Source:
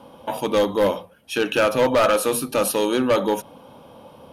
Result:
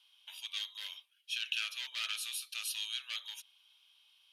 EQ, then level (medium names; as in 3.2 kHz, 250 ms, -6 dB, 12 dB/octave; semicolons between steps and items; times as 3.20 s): ladder high-pass 2.6 kHz, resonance 40%; treble shelf 8.6 kHz -10.5 dB; 0.0 dB